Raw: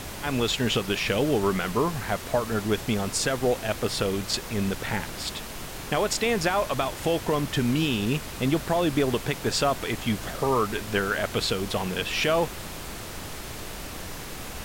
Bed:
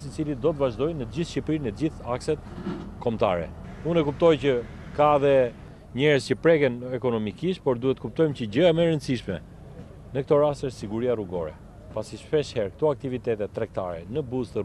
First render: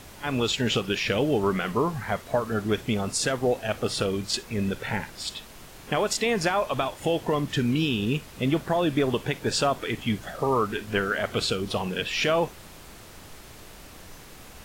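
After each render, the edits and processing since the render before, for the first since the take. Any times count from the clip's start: noise print and reduce 9 dB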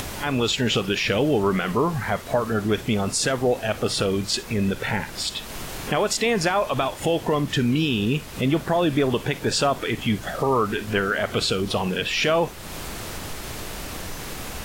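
in parallel at 0 dB: limiter -23.5 dBFS, peak gain reduction 10.5 dB; on the sum: upward compressor, threshold -24 dBFS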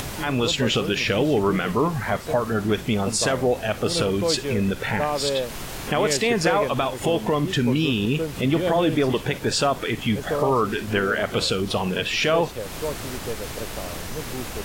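add bed -6 dB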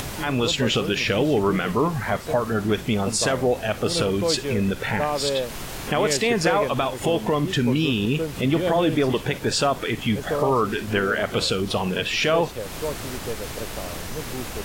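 nothing audible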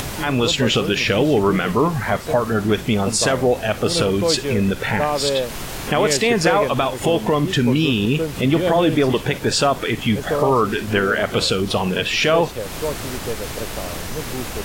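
gain +4 dB

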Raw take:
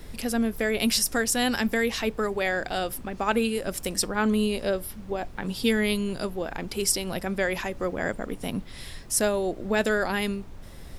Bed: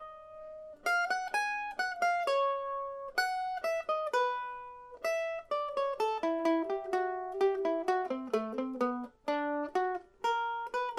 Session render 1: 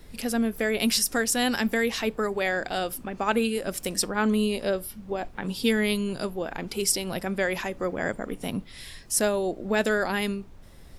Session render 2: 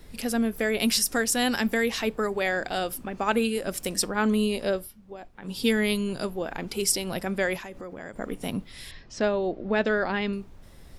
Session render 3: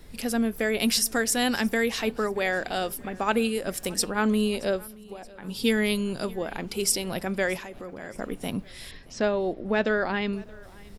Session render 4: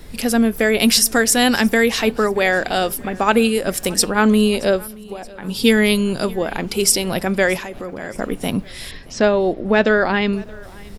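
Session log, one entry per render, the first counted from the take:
noise print and reduce 6 dB
4.75–5.59 dip -11 dB, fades 0.18 s; 7.56–8.16 compressor 5:1, threshold -36 dBFS; 8.91–10.33 Bessel low-pass 3400 Hz, order 8
feedback echo 0.625 s, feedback 49%, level -23.5 dB
gain +9.5 dB; limiter -1 dBFS, peak gain reduction 1.5 dB

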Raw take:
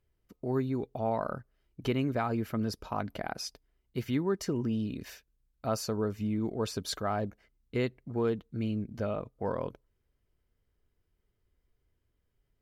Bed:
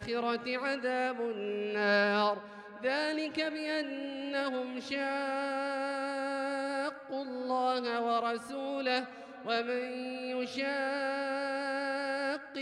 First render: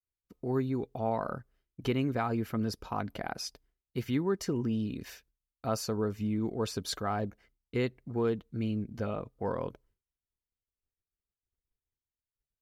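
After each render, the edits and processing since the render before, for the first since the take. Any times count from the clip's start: notch 610 Hz, Q 12; expander -60 dBFS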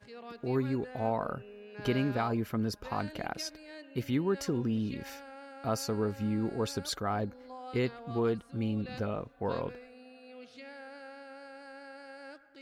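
add bed -14.5 dB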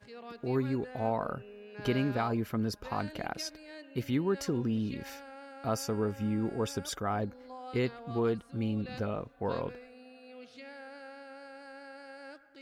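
5.75–7.22 Butterworth band-stop 4200 Hz, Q 5.8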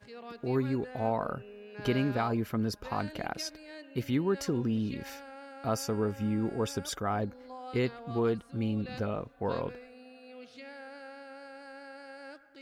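gain +1 dB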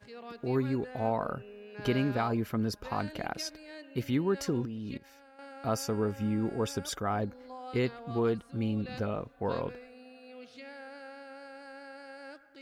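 4.65–5.39 level quantiser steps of 19 dB

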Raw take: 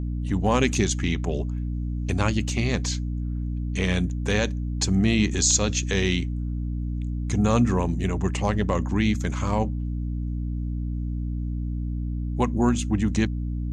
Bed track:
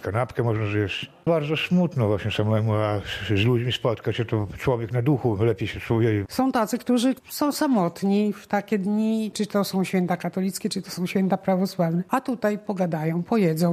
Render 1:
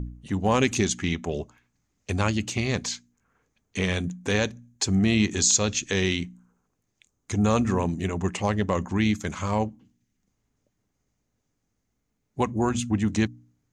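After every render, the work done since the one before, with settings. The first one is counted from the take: de-hum 60 Hz, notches 5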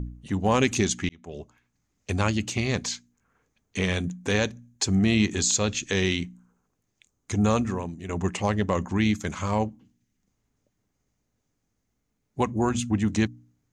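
1.09–2.15 fade in equal-power; 5.32–5.8 bell 5800 Hz -5.5 dB 0.59 oct; 7.5–8.09 fade out quadratic, to -10 dB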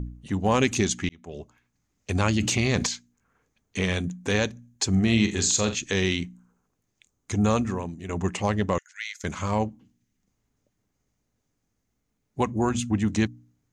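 2.15–2.87 fast leveller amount 70%; 4.89–5.75 flutter echo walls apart 7.4 m, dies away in 0.28 s; 8.78–9.24 rippled Chebyshev high-pass 1400 Hz, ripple 6 dB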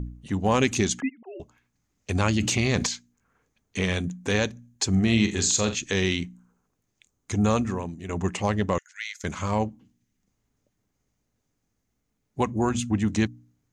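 1–1.4 sine-wave speech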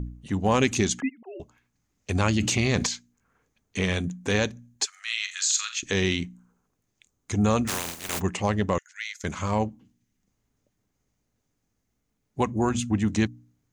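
4.85–5.83 elliptic high-pass 1300 Hz, stop band 80 dB; 7.67–8.19 spectral contrast lowered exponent 0.21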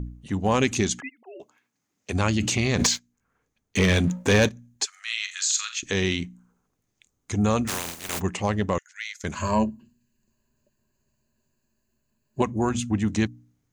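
1.01–2.12 HPF 600 Hz -> 150 Hz; 2.79–4.49 sample leveller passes 2; 9.35–12.42 ripple EQ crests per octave 1.4, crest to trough 15 dB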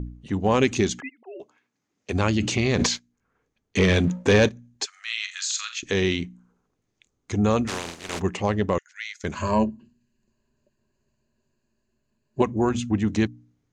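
LPF 5900 Hz 12 dB/oct; bell 400 Hz +4 dB 0.98 oct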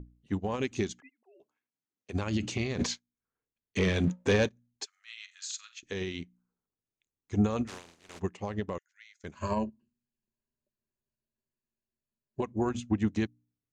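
limiter -15.5 dBFS, peak gain reduction 9.5 dB; upward expander 2.5:1, over -34 dBFS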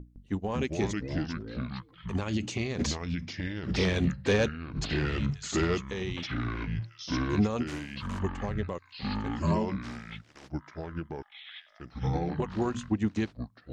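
echoes that change speed 0.159 s, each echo -4 st, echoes 3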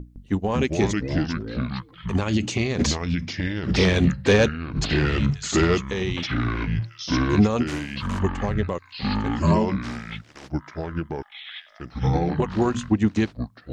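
gain +8 dB

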